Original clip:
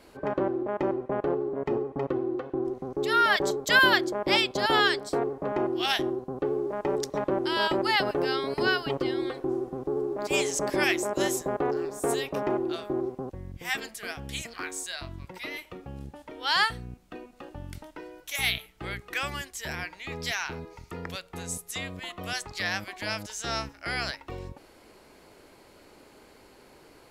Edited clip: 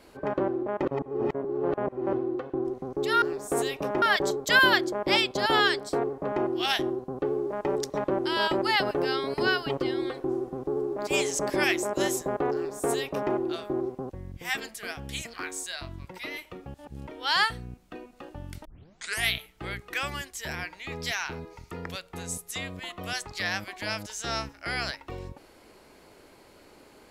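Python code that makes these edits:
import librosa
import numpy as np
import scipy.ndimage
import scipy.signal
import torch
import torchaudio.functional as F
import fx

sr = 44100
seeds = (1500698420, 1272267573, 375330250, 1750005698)

y = fx.edit(x, sr, fx.reverse_span(start_s=0.85, length_s=1.28),
    fx.duplicate(start_s=11.74, length_s=0.8, to_s=3.22),
    fx.reverse_span(start_s=15.94, length_s=0.33),
    fx.tape_start(start_s=17.85, length_s=0.65), tone=tone)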